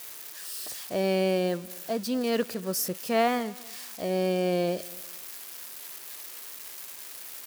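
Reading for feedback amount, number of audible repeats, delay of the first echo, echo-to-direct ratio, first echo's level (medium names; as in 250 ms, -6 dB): 30%, 2, 237 ms, -21.5 dB, -22.0 dB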